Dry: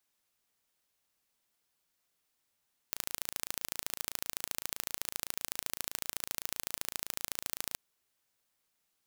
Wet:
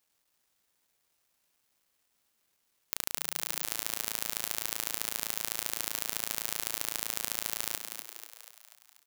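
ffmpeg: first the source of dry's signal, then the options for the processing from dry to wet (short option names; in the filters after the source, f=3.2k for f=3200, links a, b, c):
-f lavfi -i "aevalsrc='0.501*eq(mod(n,1586),0)*(0.5+0.5*eq(mod(n,3172),0))':d=4.82:s=44100"
-filter_complex "[0:a]acontrast=68,acrusher=bits=10:mix=0:aa=0.000001,asplit=2[a][b];[b]asplit=7[c][d][e][f][g][h][i];[c]adelay=243,afreqshift=140,volume=-7dB[j];[d]adelay=486,afreqshift=280,volume=-11.9dB[k];[e]adelay=729,afreqshift=420,volume=-16.8dB[l];[f]adelay=972,afreqshift=560,volume=-21.6dB[m];[g]adelay=1215,afreqshift=700,volume=-26.5dB[n];[h]adelay=1458,afreqshift=840,volume=-31.4dB[o];[i]adelay=1701,afreqshift=980,volume=-36.3dB[p];[j][k][l][m][n][o][p]amix=inputs=7:normalize=0[q];[a][q]amix=inputs=2:normalize=0"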